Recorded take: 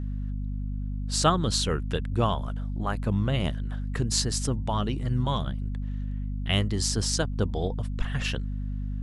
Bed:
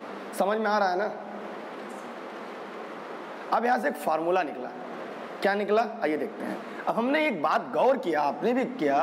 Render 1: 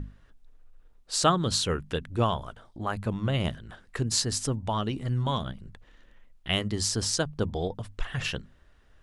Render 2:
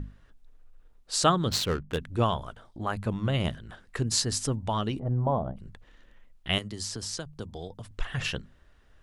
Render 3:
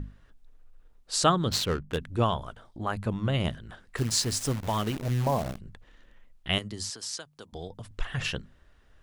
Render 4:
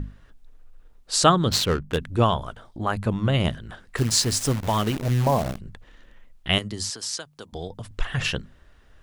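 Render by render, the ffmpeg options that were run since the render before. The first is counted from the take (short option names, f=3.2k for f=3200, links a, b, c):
-af "bandreject=f=50:t=h:w=6,bandreject=f=100:t=h:w=6,bandreject=f=150:t=h:w=6,bandreject=f=200:t=h:w=6,bandreject=f=250:t=h:w=6"
-filter_complex "[0:a]asplit=3[a][b][c];[a]afade=t=out:st=1.48:d=0.02[d];[b]adynamicsmooth=sensitivity=7:basefreq=860,afade=t=in:st=1.48:d=0.02,afade=t=out:st=1.96:d=0.02[e];[c]afade=t=in:st=1.96:d=0.02[f];[d][e][f]amix=inputs=3:normalize=0,asplit=3[g][h][i];[g]afade=t=out:st=4.98:d=0.02[j];[h]lowpass=f=710:t=q:w=2.7,afade=t=in:st=4.98:d=0.02,afade=t=out:st=5.56:d=0.02[k];[i]afade=t=in:st=5.56:d=0.02[l];[j][k][l]amix=inputs=3:normalize=0,asettb=1/sr,asplit=3[m][n][o];[m]atrim=end=6.584[p];[n]atrim=start=6.58:end=7.91,asetpts=PTS-STARTPTS,afade=t=in:d=0.004:c=qsin,afade=t=out:st=1.326:d=0.004:c=qsin,acrossover=split=130|4400[q][r][s];[q]acompressor=threshold=-45dB:ratio=4[t];[r]acompressor=threshold=-38dB:ratio=4[u];[s]acompressor=threshold=-37dB:ratio=4[v];[t][u][v]amix=inputs=3:normalize=0[w];[o]atrim=start=7.906[x];[p][w]acrossfade=d=0.004:c1=hsin:c2=qsin[y];[y][x]acrossfade=d=0.004:c1=qsin:c2=hsin"
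-filter_complex "[0:a]asplit=3[a][b][c];[a]afade=t=out:st=3.97:d=0.02[d];[b]acrusher=bits=7:dc=4:mix=0:aa=0.000001,afade=t=in:st=3.97:d=0.02,afade=t=out:st=5.57:d=0.02[e];[c]afade=t=in:st=5.57:d=0.02[f];[d][e][f]amix=inputs=3:normalize=0,asettb=1/sr,asplit=3[g][h][i];[g]atrim=end=6.904[j];[h]atrim=start=6.9:end=7.53,asetpts=PTS-STARTPTS,afade=t=in:d=0.004:c=qsin,afade=t=out:st=0.626:d=0.004:c=qsin,highpass=f=880:p=1[k];[i]atrim=start=7.526[l];[j][k]acrossfade=d=0.004:c1=hsin:c2=qsin[m];[m][l]acrossfade=d=0.004:c1=qsin:c2=hsin"
-af "volume=5.5dB"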